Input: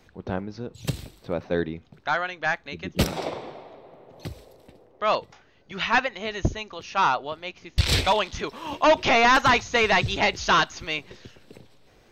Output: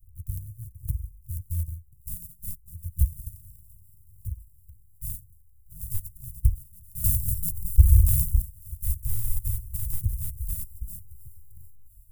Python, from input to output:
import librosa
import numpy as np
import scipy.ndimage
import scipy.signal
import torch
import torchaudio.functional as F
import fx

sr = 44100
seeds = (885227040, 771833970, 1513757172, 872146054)

p1 = np.r_[np.sort(x[:len(x) // 128 * 128].reshape(-1, 128), axis=1).ravel(), x[len(x) // 128 * 128:]]
p2 = scipy.signal.sosfilt(scipy.signal.cheby2(4, 80, [470.0, 2600.0], 'bandstop', fs=sr, output='sos'), p1)
p3 = fx.low_shelf(p2, sr, hz=170.0, db=9.0)
p4 = 10.0 ** (-23.5 / 20.0) * np.tanh(p3 / 10.0 ** (-23.5 / 20.0))
p5 = p3 + (p4 * librosa.db_to_amplitude(-11.0))
p6 = fx.transient(p5, sr, attack_db=2, sustain_db=-2)
p7 = fx.echo_wet_highpass(p6, sr, ms=704, feedback_pct=60, hz=5500.0, wet_db=-23.0)
y = fx.env_flatten(p7, sr, amount_pct=50, at=(7.04, 8.42))